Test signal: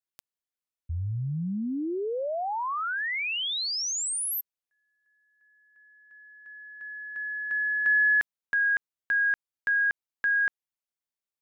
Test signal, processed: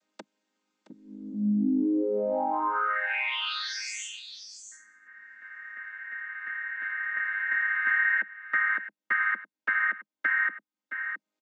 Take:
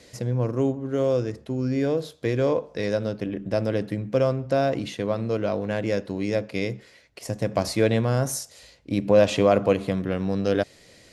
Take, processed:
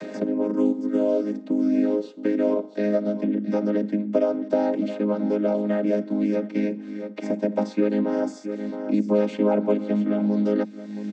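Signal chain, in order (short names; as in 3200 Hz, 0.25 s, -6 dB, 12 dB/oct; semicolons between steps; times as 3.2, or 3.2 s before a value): chord vocoder major triad, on G#3; echo 0.668 s -17 dB; three-band squash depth 70%; gain +1.5 dB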